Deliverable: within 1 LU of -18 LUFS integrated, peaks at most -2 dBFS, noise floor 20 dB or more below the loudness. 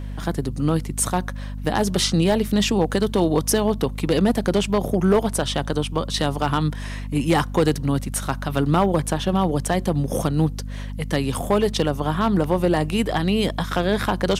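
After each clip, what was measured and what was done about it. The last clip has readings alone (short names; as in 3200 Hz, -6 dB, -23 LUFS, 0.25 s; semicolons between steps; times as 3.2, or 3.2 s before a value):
clipped 0.5%; flat tops at -10.5 dBFS; hum 50 Hz; harmonics up to 250 Hz; hum level -28 dBFS; loudness -22.0 LUFS; peak -10.5 dBFS; loudness target -18.0 LUFS
-> clip repair -10.5 dBFS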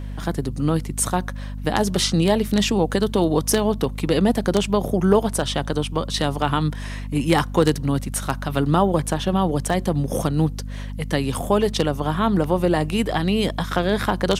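clipped 0.0%; hum 50 Hz; harmonics up to 250 Hz; hum level -28 dBFS
-> notches 50/100/150/200/250 Hz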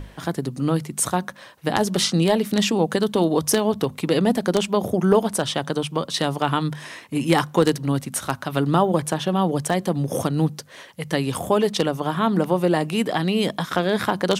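hum none; loudness -22.0 LUFS; peak -1.5 dBFS; loudness target -18.0 LUFS
-> gain +4 dB; limiter -2 dBFS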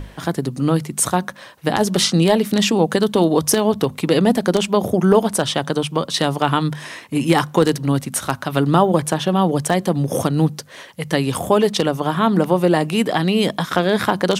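loudness -18.5 LUFS; peak -2.0 dBFS; noise floor -41 dBFS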